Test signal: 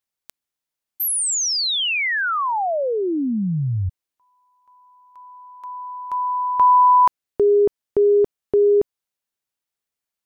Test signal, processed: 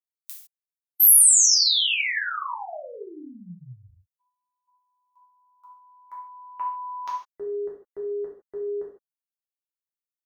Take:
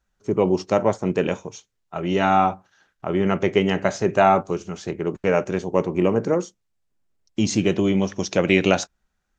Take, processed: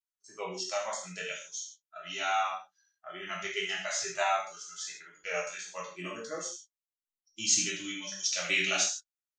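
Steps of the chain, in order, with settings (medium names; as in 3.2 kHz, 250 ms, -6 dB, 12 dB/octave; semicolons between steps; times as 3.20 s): pre-emphasis filter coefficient 0.97; spectral noise reduction 21 dB; gated-style reverb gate 180 ms falling, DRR -5 dB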